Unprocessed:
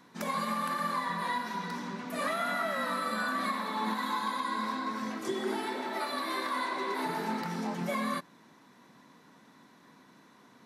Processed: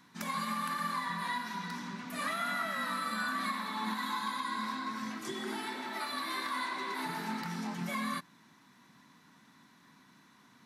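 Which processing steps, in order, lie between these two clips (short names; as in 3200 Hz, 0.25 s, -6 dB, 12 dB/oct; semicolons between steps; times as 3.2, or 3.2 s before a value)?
bell 500 Hz -12 dB 1.3 oct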